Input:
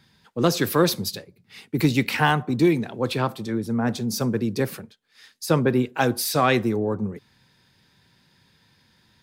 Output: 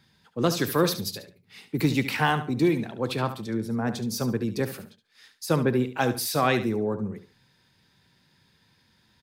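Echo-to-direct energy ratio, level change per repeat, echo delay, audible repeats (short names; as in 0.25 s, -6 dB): -11.0 dB, -11.5 dB, 71 ms, 2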